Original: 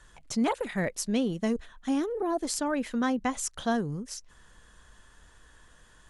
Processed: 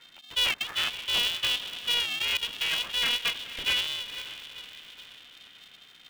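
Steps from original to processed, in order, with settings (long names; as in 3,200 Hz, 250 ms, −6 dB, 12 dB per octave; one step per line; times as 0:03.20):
feedback delay with all-pass diffusion 506 ms, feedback 49%, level −12 dB
voice inversion scrambler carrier 3,400 Hz
ring modulator with a square carrier 240 Hz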